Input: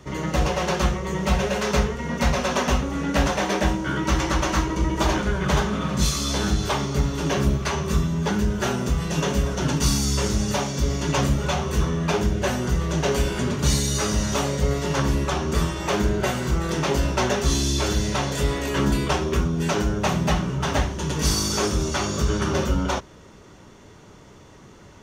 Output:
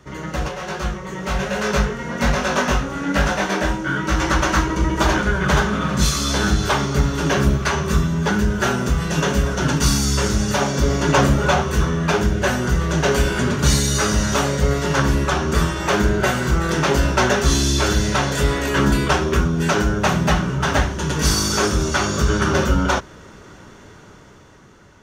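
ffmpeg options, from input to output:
-filter_complex "[0:a]asplit=3[a][b][c];[a]afade=t=out:st=0.48:d=0.02[d];[b]flanger=delay=19:depth=4:speed=1.2,afade=t=in:st=0.48:d=0.02,afade=t=out:st=4.2:d=0.02[e];[c]afade=t=in:st=4.2:d=0.02[f];[d][e][f]amix=inputs=3:normalize=0,asettb=1/sr,asplit=3[g][h][i];[g]atrim=end=10.614[j];[h]atrim=start=10.61:end=11.62,asetpts=PTS-STARTPTS,afade=t=in:d=0.004:c=qsin,afade=t=out:st=1.006:d=0.004:c=qsin,equalizer=f=570:w=0.43:g=5[k];[i]atrim=start=11.616[l];[j][k]acrossfade=d=0.004:c1=hsin:c2=qsin[m];[m][l]acrossfade=d=0.004:c1=qsin:c2=hsin,equalizer=f=1.5k:w=2.9:g=6.5,dynaudnorm=f=280:g=9:m=11.5dB,volume=-3dB"

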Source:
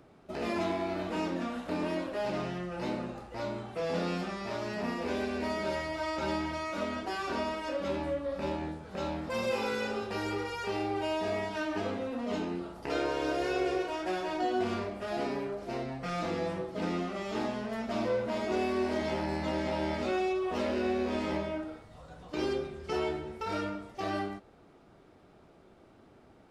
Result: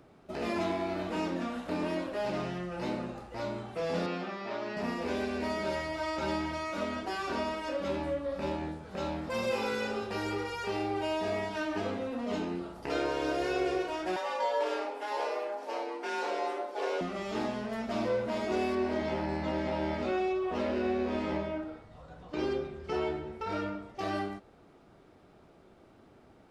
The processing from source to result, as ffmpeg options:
-filter_complex "[0:a]asettb=1/sr,asplit=3[a][b][c];[a]atrim=end=4.064[d];[b]atrim=start=4.06:end=4.77,asetpts=PTS-STARTPTS,afade=t=in:d=0.004:c=qsin,afade=t=out:st=0.706:d=0.004:c=qsin,highpass=220,lowpass=3.9k[e];[c]atrim=start=4.766[f];[d][e]acrossfade=d=0.004:c1=hsin:c2=qsin[g];[g][f]acrossfade=d=0.004:c1=qsin:c2=hsin,asettb=1/sr,asplit=3[h][i][j];[h]atrim=end=14.164[k];[i]atrim=start=14.16:end=17.01,asetpts=PTS-STARTPTS,afade=t=in:d=0.004:c=qsin,afade=t=out:st=2.846:d=0.004:c=qsin,afreqshift=210[l];[j]atrim=start=17.006[m];[k][l]acrossfade=d=0.004:c1=hsin:c2=qsin[n];[n][m]acrossfade=d=0.004:c1=qsin:c2=hsin,asettb=1/sr,asplit=3[o][p][q];[o]atrim=end=18.754[r];[p]atrim=start=18.75:end=23.99,asetpts=PTS-STARTPTS,afade=t=in:d=0.004:c=qsin,afade=t=out:st=5.236:d=0.004:c=qsin,lowpass=f=3.3k:p=1[s];[q]atrim=start=23.986[t];[r][s]acrossfade=d=0.004:c1=hsin:c2=qsin[u];[u][t]acrossfade=d=0.004:c1=qsin:c2=hsin"

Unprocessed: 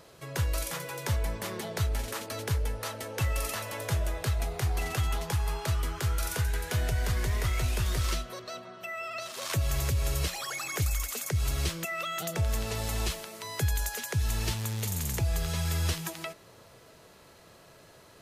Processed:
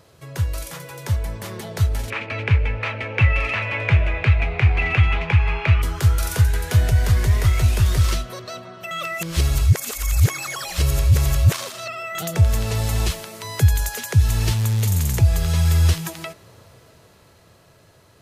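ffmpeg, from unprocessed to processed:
-filter_complex "[0:a]asettb=1/sr,asplit=3[a][b][c];[a]atrim=end=2.104[d];[b]atrim=start=2.1:end=5.82,asetpts=PTS-STARTPTS,afade=t=in:d=0.004:c=qsin,afade=t=out:st=3.716:d=0.004:c=qsin,lowpass=f=2.4k:t=q:w=6.5[e];[c]atrim=start=5.816[f];[d][e]acrossfade=d=0.004:c1=hsin:c2=qsin[g];[g][f]acrossfade=d=0.004:c1=qsin:c2=hsin,asplit=3[h][i][j];[h]atrim=end=8.912[k];[i]atrim=start=8.908:end=12.152,asetpts=PTS-STARTPTS,areverse[l];[j]atrim=start=12.148[m];[k][l]acrossfade=d=0.004:c1=hsin:c2=hsin[n];[n][m]acrossfade=d=0.004:c1=hsin:c2=hsin,equalizer=f=94:t=o:w=1.3:g=9,dynaudnorm=f=230:g=17:m=6.5dB"

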